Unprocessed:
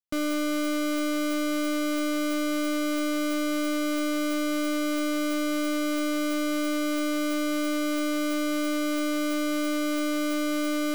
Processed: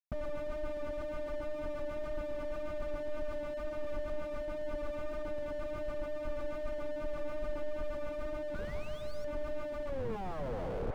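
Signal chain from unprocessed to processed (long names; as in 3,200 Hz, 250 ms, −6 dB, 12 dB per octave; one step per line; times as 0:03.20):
turntable brake at the end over 1.11 s
Butterworth high-pass 470 Hz 96 dB per octave
gate on every frequency bin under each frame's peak −15 dB strong
tilt shelving filter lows +6 dB, about 800 Hz
floating-point word with a short mantissa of 2 bits
tape wow and flutter 15 cents
flanger 1.3 Hz, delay 1.2 ms, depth 4.7 ms, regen −24%
sound drawn into the spectrogram rise, 0:08.54–0:09.25, 1,400–5,800 Hz −37 dBFS
comparator with hysteresis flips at −58.5 dBFS
bucket-brigade delay 173 ms, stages 2,048, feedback 81%, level −17 dB
slew-rate limiting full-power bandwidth 3.5 Hz
level +6.5 dB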